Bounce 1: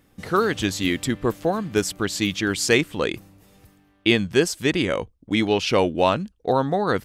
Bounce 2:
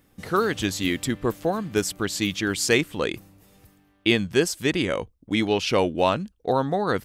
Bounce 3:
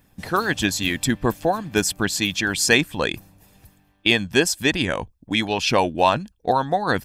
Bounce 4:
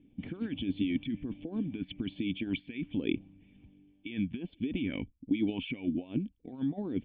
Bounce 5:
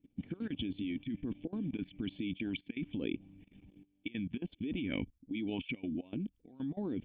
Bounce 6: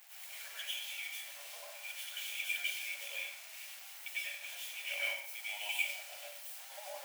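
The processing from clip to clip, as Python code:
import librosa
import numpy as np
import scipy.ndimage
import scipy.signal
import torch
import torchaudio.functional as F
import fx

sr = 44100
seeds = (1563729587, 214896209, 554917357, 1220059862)

y1 = fx.high_shelf(x, sr, hz=11000.0, db=5.5)
y1 = F.gain(torch.from_numpy(y1), -2.0).numpy()
y2 = y1 + 0.42 * np.pad(y1, (int(1.2 * sr / 1000.0), 0))[:len(y1)]
y2 = fx.hpss(y2, sr, part='harmonic', gain_db=-9)
y2 = F.gain(torch.from_numpy(y2), 5.5).numpy()
y3 = fx.over_compress(y2, sr, threshold_db=-26.0, ratio=-1.0)
y3 = fx.formant_cascade(y3, sr, vowel='i')
y3 = fx.bell_lfo(y3, sr, hz=1.3, low_hz=370.0, high_hz=2100.0, db=9)
y4 = fx.level_steps(y3, sr, step_db=20)
y4 = F.gain(torch.from_numpy(y4), 4.0).numpy()
y5 = y4 + 0.5 * 10.0 ** (-35.0 / 20.0) * np.diff(np.sign(y4), prepend=np.sign(y4[:1]))
y5 = scipy.signal.sosfilt(scipy.signal.cheby1(6, 6, 560.0, 'highpass', fs=sr, output='sos'), y5)
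y5 = fx.rev_plate(y5, sr, seeds[0], rt60_s=0.64, hf_ratio=0.95, predelay_ms=85, drr_db=-8.5)
y5 = F.gain(torch.from_numpy(y5), -1.0).numpy()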